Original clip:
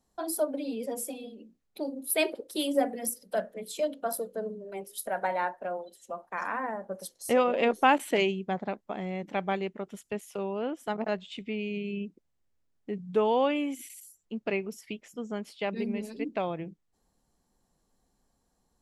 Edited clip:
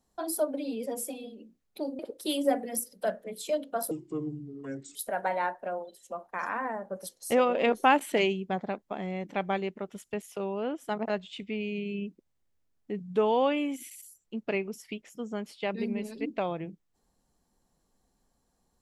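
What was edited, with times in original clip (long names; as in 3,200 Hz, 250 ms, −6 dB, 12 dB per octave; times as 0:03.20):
0:01.99–0:02.29: remove
0:04.21–0:04.94: play speed 70%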